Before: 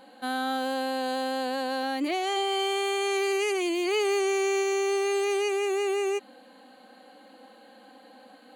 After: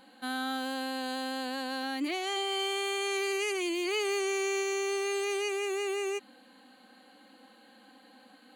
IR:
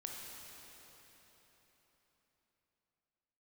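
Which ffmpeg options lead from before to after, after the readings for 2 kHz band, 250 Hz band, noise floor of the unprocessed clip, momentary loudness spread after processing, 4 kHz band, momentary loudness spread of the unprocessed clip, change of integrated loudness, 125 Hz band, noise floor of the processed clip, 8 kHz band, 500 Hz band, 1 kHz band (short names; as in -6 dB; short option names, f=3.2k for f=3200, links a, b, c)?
-2.0 dB, -4.0 dB, -53 dBFS, 5 LU, -1.5 dB, 4 LU, -4.5 dB, n/a, -58 dBFS, -1.5 dB, -6.0 dB, -6.5 dB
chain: -af "equalizer=f=590:w=1.2:g=-8.5,volume=-1.5dB"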